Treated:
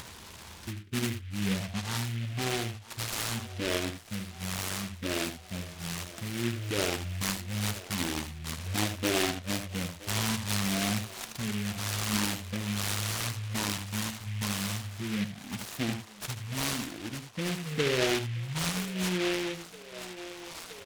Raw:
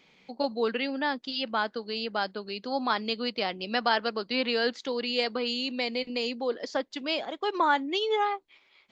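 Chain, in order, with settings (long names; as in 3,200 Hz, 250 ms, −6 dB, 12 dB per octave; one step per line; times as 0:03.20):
bass and treble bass +6 dB, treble +5 dB
double-tracking delay 33 ms −8.5 dB
feedback echo with a band-pass in the loop 415 ms, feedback 81%, band-pass 2,100 Hz, level −15 dB
upward compression, threshold −28 dBFS
wrong playback speed 78 rpm record played at 33 rpm
parametric band 1,600 Hz +8 dB 0.22 octaves
notch filter 1,300 Hz, Q 9
short delay modulated by noise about 2,300 Hz, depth 0.22 ms
level −5 dB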